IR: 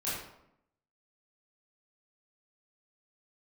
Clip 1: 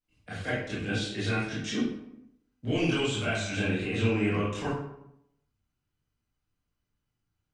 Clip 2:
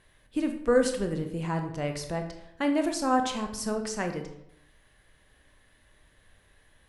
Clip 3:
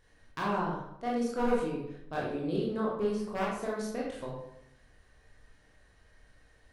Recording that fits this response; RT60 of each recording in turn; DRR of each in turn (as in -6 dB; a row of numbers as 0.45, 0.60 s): 1; 0.80, 0.80, 0.80 s; -10.5, 5.0, -5.0 dB